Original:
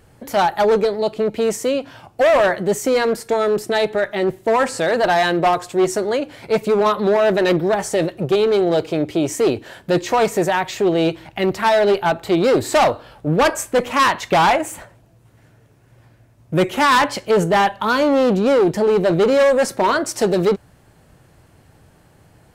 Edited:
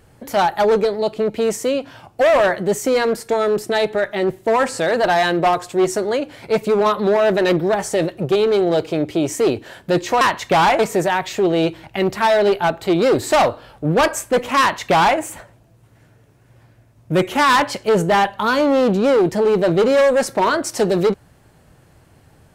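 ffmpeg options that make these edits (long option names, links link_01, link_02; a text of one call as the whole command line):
ffmpeg -i in.wav -filter_complex "[0:a]asplit=3[link_01][link_02][link_03];[link_01]atrim=end=10.212[link_04];[link_02]atrim=start=14.018:end=14.602[link_05];[link_03]atrim=start=10.208[link_06];[link_04][link_05]acrossfade=duration=0.004:curve1=hsin:curve2=hsin[link_07];[link_07][link_06]acrossfade=duration=0.004:curve1=hsin:curve2=hsin" out.wav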